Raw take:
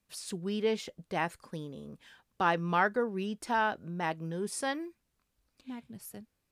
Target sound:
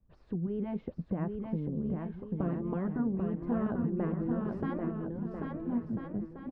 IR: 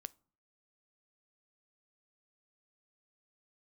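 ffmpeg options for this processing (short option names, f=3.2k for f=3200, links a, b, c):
-filter_complex "[0:a]asettb=1/sr,asplit=3[a][b][c];[a]atrim=end=3.664[d];[b]atrim=start=3.66:end=5.78,asetpts=PTS-STARTPTS,afade=t=in:d=0.004:c=qsin,afade=t=out:st=2.116:d=0.004:c=qsin,acontrast=27[e];[c]atrim=start=5.776[f];[d][e]acrossfade=d=0.004:c1=hsin:c2=qsin[g];[g][f]acrossfade=d=0.004:c1=qsin:c2=hsin,afftfilt=real='re*lt(hypot(re,im),0.178)':imag='im*lt(hypot(re,im),0.178)':win_size=1024:overlap=0.75,lowpass=1k,aemphasis=mode=reproduction:type=riaa,acompressor=threshold=-32dB:ratio=8,adynamicequalizer=threshold=0.00251:dfrequency=240:dqfactor=2:tfrequency=240:tqfactor=2:attack=5:release=100:ratio=0.375:range=3:mode=boostabove:tftype=bell,aecho=1:1:790|1343|1730|2001|2191:0.631|0.398|0.251|0.158|0.1"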